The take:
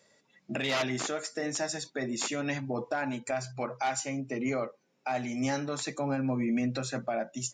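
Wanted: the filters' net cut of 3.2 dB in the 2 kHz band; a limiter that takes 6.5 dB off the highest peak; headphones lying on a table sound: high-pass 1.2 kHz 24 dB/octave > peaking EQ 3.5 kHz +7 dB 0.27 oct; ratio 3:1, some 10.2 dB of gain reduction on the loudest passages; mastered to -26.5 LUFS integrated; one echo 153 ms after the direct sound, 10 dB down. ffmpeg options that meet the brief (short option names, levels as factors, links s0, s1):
-af "equalizer=f=2000:t=o:g=-4,acompressor=threshold=0.00891:ratio=3,alimiter=level_in=3.35:limit=0.0631:level=0:latency=1,volume=0.299,highpass=f=1200:w=0.5412,highpass=f=1200:w=1.3066,equalizer=f=3500:t=o:w=0.27:g=7,aecho=1:1:153:0.316,volume=11.9"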